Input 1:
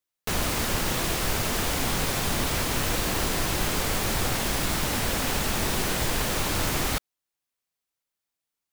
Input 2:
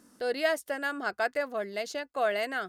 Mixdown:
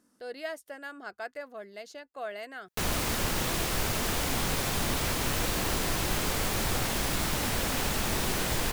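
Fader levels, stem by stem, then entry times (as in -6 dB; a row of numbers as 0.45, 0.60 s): -3.0, -9.5 dB; 2.50, 0.00 s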